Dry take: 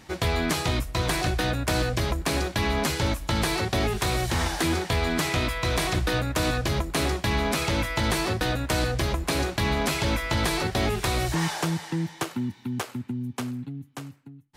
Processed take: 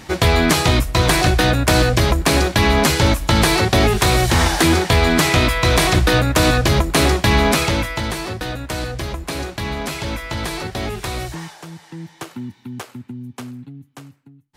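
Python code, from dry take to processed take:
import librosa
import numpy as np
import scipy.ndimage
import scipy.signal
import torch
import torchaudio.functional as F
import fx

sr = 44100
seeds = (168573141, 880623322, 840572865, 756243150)

y = fx.gain(x, sr, db=fx.line((7.5, 10.5), (8.15, 0.0), (11.22, 0.0), (11.57, -10.5), (12.33, -1.0)))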